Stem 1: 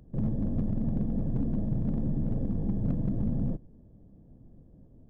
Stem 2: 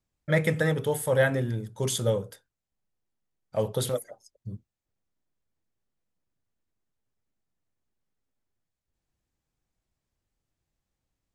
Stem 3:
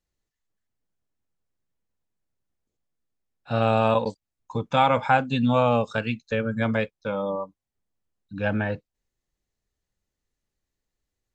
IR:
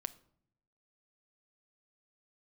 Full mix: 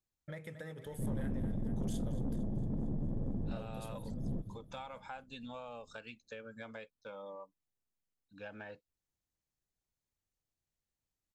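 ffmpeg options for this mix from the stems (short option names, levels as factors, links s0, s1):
-filter_complex "[0:a]adelay=850,volume=0.631,asplit=2[s0][s1];[s1]volume=0.0708[s2];[1:a]volume=0.282,asplit=2[s3][s4];[s4]volume=0.0708[s5];[2:a]bass=f=250:g=-12,treble=f=4000:g=8,volume=0.178,asplit=2[s6][s7];[s7]apad=whole_len=262262[s8];[s0][s8]sidechaincompress=threshold=0.00501:ratio=8:attack=16:release=350[s9];[s3][s6]amix=inputs=2:normalize=0,acompressor=threshold=0.00708:ratio=6,volume=1[s10];[s2][s5]amix=inputs=2:normalize=0,aecho=0:1:227|454|681|908|1135|1362|1589|1816|2043:1|0.57|0.325|0.185|0.106|0.0602|0.0343|0.0195|0.0111[s11];[s9][s10][s11]amix=inputs=3:normalize=0,asoftclip=type=tanh:threshold=0.0299"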